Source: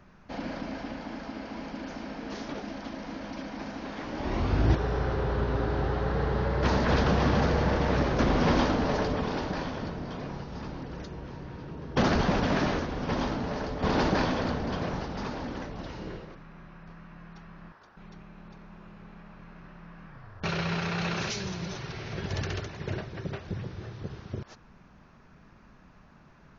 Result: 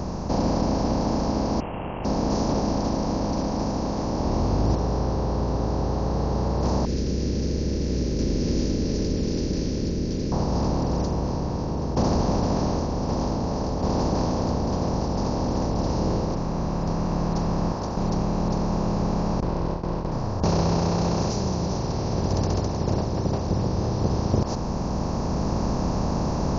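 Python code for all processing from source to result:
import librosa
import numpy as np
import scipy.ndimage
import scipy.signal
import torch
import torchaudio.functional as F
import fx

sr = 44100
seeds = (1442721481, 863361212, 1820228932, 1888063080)

y = fx.chain(x, sr, fx.law_mismatch(coded='A'),
    fx.freq_invert(carrier_hz=3000), at=(1.6, 2.05))
y = fx.chain(y, sr, fx.ellip_bandstop(low_hz=390.0, high_hz=2100.0, order=3, stop_db=50),
    fx.peak_eq(hz=120.0, db=-10.0, octaves=1.8), at=(6.85, 10.32))
y = fx.chain(y, sr, fx.lower_of_two(delay_ms=2.0),
    fx.bessel_lowpass(hz=2600.0, order=8),
    fx.gate_hold(open_db=-41.0, close_db=-44.0, hold_ms=71.0, range_db=-21, attack_ms=1.4, release_ms=100.0), at=(19.4, 20.12))
y = fx.bin_compress(y, sr, power=0.4)
y = fx.band_shelf(y, sr, hz=2200.0, db=-15.5, octaves=1.7)
y = fx.rider(y, sr, range_db=10, speed_s=2.0)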